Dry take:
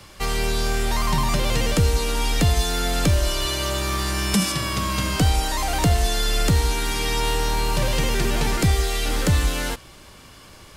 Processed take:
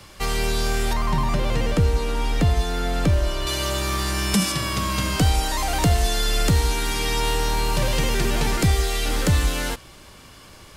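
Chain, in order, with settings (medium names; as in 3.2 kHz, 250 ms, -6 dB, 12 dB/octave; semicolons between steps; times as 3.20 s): 0.93–3.47 s: treble shelf 3.2 kHz -11.5 dB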